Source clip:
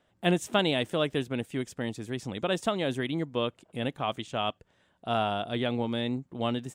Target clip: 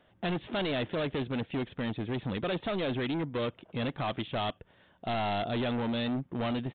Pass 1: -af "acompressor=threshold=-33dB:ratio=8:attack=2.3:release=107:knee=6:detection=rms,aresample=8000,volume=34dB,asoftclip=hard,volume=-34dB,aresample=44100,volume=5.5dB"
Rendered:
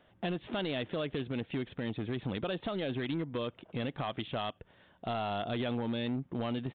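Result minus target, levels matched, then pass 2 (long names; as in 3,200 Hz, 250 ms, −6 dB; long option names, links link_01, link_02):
downward compressor: peak gain reduction +9 dB
-af "acompressor=threshold=-22.5dB:ratio=8:attack=2.3:release=107:knee=6:detection=rms,aresample=8000,volume=34dB,asoftclip=hard,volume=-34dB,aresample=44100,volume=5.5dB"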